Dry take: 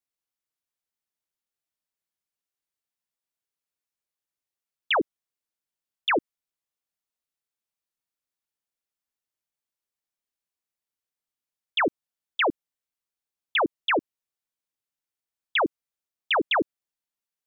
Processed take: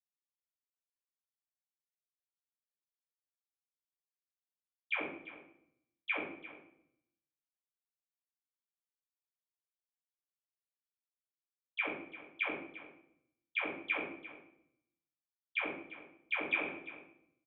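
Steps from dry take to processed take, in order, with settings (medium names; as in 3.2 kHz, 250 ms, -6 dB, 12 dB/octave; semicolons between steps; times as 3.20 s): expander on every frequency bin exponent 2; gate -37 dBFS, range -17 dB; treble shelf 2.1 kHz +3.5 dB; level held to a coarse grid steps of 21 dB; distance through air 130 m; feedback comb 65 Hz, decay 1 s, harmonics all, mix 30%; delay 346 ms -15.5 dB; reverberation RT60 0.65 s, pre-delay 4 ms, DRR -7.5 dB; trim -2 dB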